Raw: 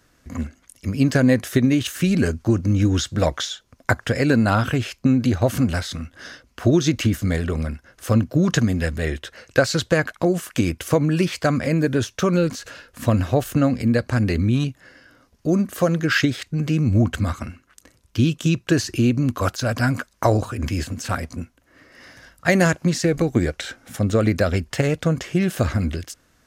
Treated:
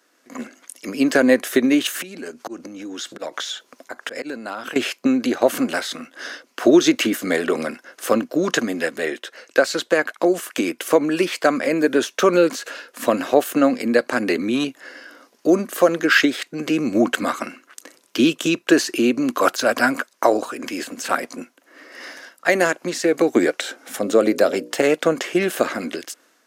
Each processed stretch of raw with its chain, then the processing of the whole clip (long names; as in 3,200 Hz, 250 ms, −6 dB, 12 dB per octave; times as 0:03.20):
0:02.02–0:04.76: volume swells 318 ms + downward compressor 16 to 1, threshold −32 dBFS
0:23.56–0:24.81: mains-hum notches 60/120/180/240/300/360/420/480/540/600 Hz + dynamic equaliser 1,900 Hz, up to −7 dB, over −40 dBFS, Q 0.85
whole clip: high-pass filter 290 Hz 24 dB per octave; automatic gain control; dynamic equaliser 5,500 Hz, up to −4 dB, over −36 dBFS, Q 1.3; level −1 dB